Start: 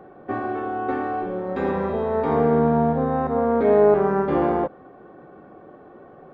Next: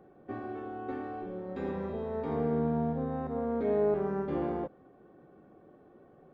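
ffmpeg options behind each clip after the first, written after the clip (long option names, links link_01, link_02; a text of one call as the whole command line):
ffmpeg -i in.wav -af "equalizer=frequency=1100:width_type=o:width=2.4:gain=-7.5,volume=-8.5dB" out.wav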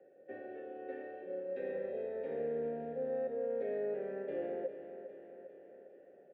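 ffmpeg -i in.wav -filter_complex "[0:a]acrossover=split=230|340|840[link_01][link_02][link_03][link_04];[link_03]alimiter=level_in=11.5dB:limit=-24dB:level=0:latency=1,volume=-11.5dB[link_05];[link_01][link_02][link_05][link_04]amix=inputs=4:normalize=0,asplit=3[link_06][link_07][link_08];[link_06]bandpass=frequency=530:width_type=q:width=8,volume=0dB[link_09];[link_07]bandpass=frequency=1840:width_type=q:width=8,volume=-6dB[link_10];[link_08]bandpass=frequency=2480:width_type=q:width=8,volume=-9dB[link_11];[link_09][link_10][link_11]amix=inputs=3:normalize=0,aecho=1:1:403|806|1209|1612|2015|2418|2821:0.282|0.169|0.101|0.0609|0.0365|0.0219|0.0131,volume=6.5dB" out.wav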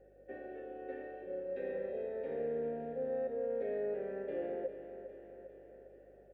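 ffmpeg -i in.wav -af "aeval=exprs='val(0)+0.000398*(sin(2*PI*50*n/s)+sin(2*PI*2*50*n/s)/2+sin(2*PI*3*50*n/s)/3+sin(2*PI*4*50*n/s)/4+sin(2*PI*5*50*n/s)/5)':channel_layout=same" out.wav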